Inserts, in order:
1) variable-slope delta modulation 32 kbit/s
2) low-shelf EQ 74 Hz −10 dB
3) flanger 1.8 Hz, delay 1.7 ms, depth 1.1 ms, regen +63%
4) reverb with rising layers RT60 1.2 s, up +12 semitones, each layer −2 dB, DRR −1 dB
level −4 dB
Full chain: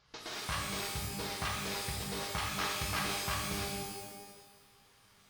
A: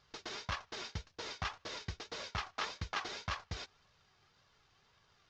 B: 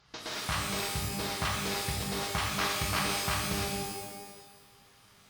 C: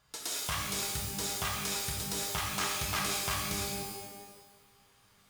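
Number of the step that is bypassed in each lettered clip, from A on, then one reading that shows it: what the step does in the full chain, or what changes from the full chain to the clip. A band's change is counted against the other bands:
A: 4, 8 kHz band −7.5 dB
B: 3, change in integrated loudness +4.5 LU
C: 1, 8 kHz band +6.0 dB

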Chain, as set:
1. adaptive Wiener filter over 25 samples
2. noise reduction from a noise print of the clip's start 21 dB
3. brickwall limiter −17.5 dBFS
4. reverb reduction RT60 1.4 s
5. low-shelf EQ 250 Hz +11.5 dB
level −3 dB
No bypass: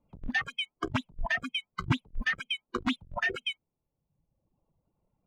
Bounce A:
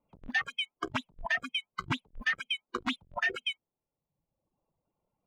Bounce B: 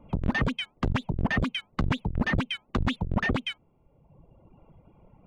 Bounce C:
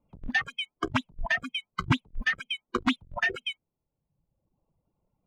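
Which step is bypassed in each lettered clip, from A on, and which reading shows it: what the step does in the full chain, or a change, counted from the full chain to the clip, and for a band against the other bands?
5, 125 Hz band −8.5 dB
2, 125 Hz band +7.5 dB
3, change in momentary loudness spread +1 LU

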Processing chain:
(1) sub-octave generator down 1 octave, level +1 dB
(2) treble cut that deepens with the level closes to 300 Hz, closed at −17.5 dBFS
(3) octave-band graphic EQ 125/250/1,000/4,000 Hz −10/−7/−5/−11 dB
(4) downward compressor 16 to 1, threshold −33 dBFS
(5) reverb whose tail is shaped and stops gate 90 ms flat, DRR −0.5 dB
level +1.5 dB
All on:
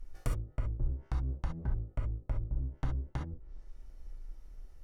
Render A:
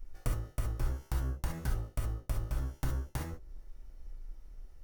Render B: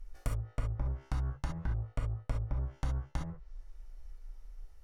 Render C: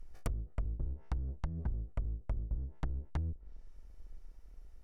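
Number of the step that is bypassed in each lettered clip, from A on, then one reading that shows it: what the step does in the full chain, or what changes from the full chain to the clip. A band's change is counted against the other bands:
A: 2, 4 kHz band +4.5 dB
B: 1, 4 kHz band +2.5 dB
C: 5, change in momentary loudness spread +2 LU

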